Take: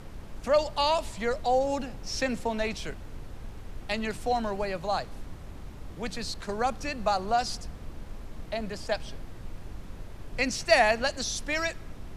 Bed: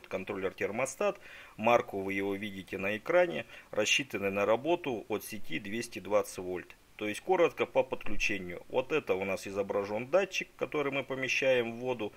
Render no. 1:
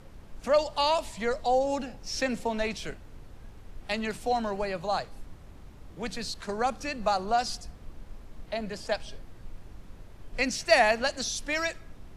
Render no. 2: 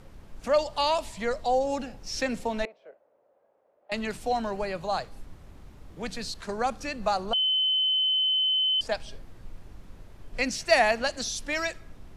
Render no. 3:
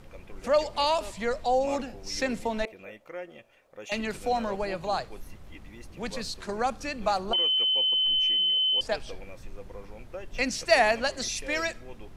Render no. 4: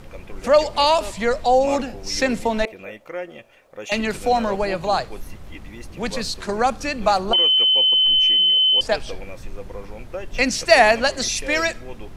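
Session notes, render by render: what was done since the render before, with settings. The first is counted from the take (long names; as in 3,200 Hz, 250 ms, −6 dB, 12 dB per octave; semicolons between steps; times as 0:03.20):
noise reduction from a noise print 6 dB
0:02.65–0:03.92: four-pole ladder band-pass 620 Hz, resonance 70%; 0:07.33–0:08.81: beep over 3,050 Hz −21.5 dBFS
mix in bed −13 dB
level +8.5 dB; brickwall limiter −1 dBFS, peak gain reduction 1.5 dB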